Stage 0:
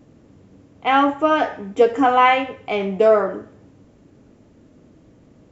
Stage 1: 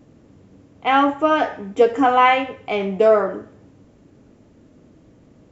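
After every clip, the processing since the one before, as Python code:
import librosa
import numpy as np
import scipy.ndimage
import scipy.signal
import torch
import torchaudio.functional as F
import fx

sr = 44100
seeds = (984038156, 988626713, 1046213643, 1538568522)

y = x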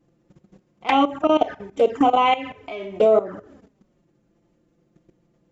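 y = fx.room_flutter(x, sr, wall_m=9.4, rt60_s=0.31)
y = fx.level_steps(y, sr, step_db=16)
y = fx.env_flanger(y, sr, rest_ms=5.9, full_db=-15.5)
y = y * 10.0 ** (3.5 / 20.0)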